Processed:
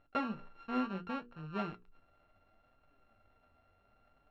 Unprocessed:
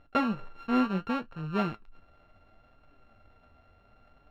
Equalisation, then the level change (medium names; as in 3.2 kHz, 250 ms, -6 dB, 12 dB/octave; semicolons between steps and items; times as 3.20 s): distance through air 69 m; bass shelf 220 Hz -4 dB; hum notches 60/120/180/240/300/360/420/480 Hz; -7.0 dB